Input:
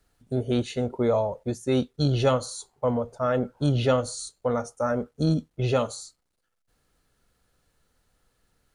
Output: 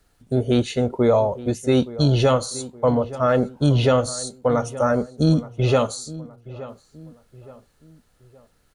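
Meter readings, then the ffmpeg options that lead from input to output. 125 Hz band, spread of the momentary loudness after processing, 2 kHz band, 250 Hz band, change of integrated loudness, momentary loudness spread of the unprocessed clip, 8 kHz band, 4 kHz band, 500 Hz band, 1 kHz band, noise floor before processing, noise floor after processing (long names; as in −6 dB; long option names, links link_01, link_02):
+6.0 dB, 15 LU, +5.5 dB, +6.0 dB, +5.5 dB, 8 LU, +6.0 dB, +5.5 dB, +5.5 dB, +5.5 dB, −77 dBFS, −62 dBFS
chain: -filter_complex "[0:a]asplit=2[link_01][link_02];[link_02]adelay=870,lowpass=frequency=1800:poles=1,volume=-17dB,asplit=2[link_03][link_04];[link_04]adelay=870,lowpass=frequency=1800:poles=1,volume=0.4,asplit=2[link_05][link_06];[link_06]adelay=870,lowpass=frequency=1800:poles=1,volume=0.4[link_07];[link_01][link_03][link_05][link_07]amix=inputs=4:normalize=0,alimiter=level_in=12.5dB:limit=-1dB:release=50:level=0:latency=1,volume=-6.5dB"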